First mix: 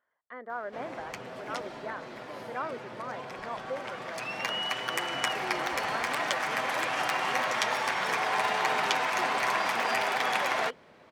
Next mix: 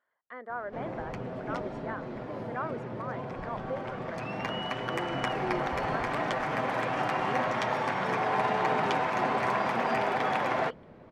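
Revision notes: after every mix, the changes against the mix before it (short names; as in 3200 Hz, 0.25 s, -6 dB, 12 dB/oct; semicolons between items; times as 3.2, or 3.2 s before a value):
background: add tilt -4.5 dB/oct; master: add low shelf 90 Hz -5.5 dB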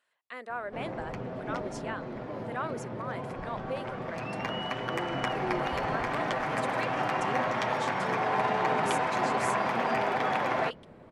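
speech: remove polynomial smoothing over 41 samples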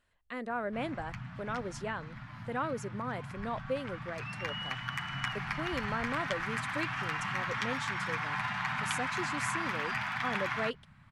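speech: remove HPF 480 Hz 12 dB/oct; background: add Chebyshev band-stop 140–1400 Hz, order 2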